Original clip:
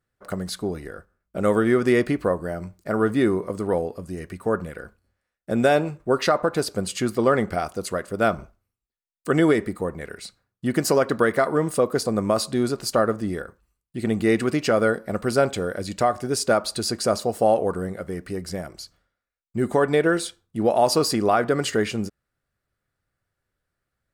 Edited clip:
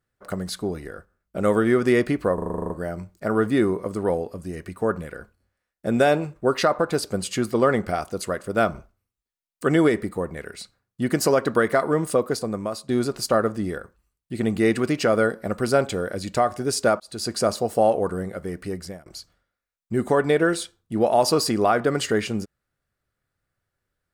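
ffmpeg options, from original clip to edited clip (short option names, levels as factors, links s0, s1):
-filter_complex "[0:a]asplit=13[s0][s1][s2][s3][s4][s5][s6][s7][s8][s9][s10][s11][s12];[s0]atrim=end=2.382[s13];[s1]atrim=start=2.338:end=2.382[s14];[s2]atrim=start=2.338:end=2.382[s15];[s3]atrim=start=2.338:end=2.382[s16];[s4]atrim=start=2.338:end=2.382[s17];[s5]atrim=start=2.338:end=2.382[s18];[s6]atrim=start=2.338:end=2.382[s19];[s7]atrim=start=2.338:end=2.382[s20];[s8]atrim=start=2.338:end=2.382[s21];[s9]atrim=start=2.338:end=12.53,asetpts=PTS-STARTPTS,afade=t=out:st=9.432:d=0.76:silence=0.211349[s22];[s10]atrim=start=12.53:end=16.64,asetpts=PTS-STARTPTS,afade=t=in:d=0.004:c=hsin:silence=0.211349,afade=t=out:st=4.106:d=0.004:c=hsin[s23];[s11]atrim=start=16.64:end=18.7,asetpts=PTS-STARTPTS,afade=t=in:d=0.33,afade=t=out:st=1.75:d=0.31:silence=0.0707946[s24];[s12]atrim=start=18.7,asetpts=PTS-STARTPTS,afade=t=in:d=0.004:c=hsin:silence=0.0707946[s25];[s13][s14]acrossfade=d=0.004:c1=hsin:c2=hsin[s26];[s26][s15]acrossfade=d=0.004:c1=hsin:c2=hsin[s27];[s27][s16]acrossfade=d=0.004:c1=hsin:c2=hsin[s28];[s28][s17]acrossfade=d=0.004:c1=hsin:c2=hsin[s29];[s29][s18]acrossfade=d=0.004:c1=hsin:c2=hsin[s30];[s30][s19]acrossfade=d=0.004:c1=hsin:c2=hsin[s31];[s31][s20]acrossfade=d=0.004:c1=hsin:c2=hsin[s32];[s32][s21]acrossfade=d=0.004:c1=hsin:c2=hsin[s33];[s22][s23][s24][s25]concat=n=4:v=0:a=1[s34];[s33][s34]acrossfade=d=0.004:c1=hsin:c2=hsin"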